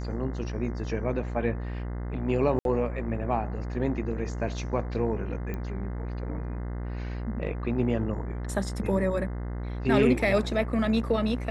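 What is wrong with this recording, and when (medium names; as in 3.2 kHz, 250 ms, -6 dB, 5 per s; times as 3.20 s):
buzz 60 Hz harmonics 35 -33 dBFS
2.59–2.65 s: dropout 62 ms
5.54 s: pop -22 dBFS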